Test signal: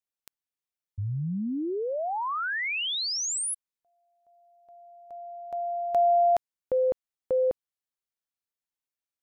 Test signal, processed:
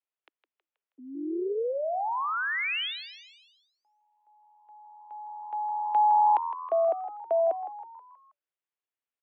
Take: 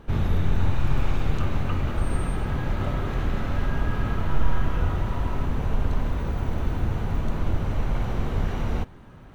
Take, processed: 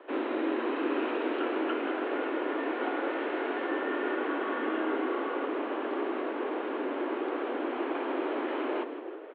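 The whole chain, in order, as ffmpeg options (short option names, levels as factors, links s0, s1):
-filter_complex "[0:a]asplit=6[s0][s1][s2][s3][s4][s5];[s1]adelay=160,afreqshift=84,volume=0.251[s6];[s2]adelay=320,afreqshift=168,volume=0.126[s7];[s3]adelay=480,afreqshift=252,volume=0.0631[s8];[s4]adelay=640,afreqshift=336,volume=0.0313[s9];[s5]adelay=800,afreqshift=420,volume=0.0157[s10];[s0][s6][s7][s8][s9][s10]amix=inputs=6:normalize=0,highpass=f=160:t=q:w=0.5412,highpass=f=160:t=q:w=1.307,lowpass=f=3100:t=q:w=0.5176,lowpass=f=3100:t=q:w=0.7071,lowpass=f=3100:t=q:w=1.932,afreqshift=150"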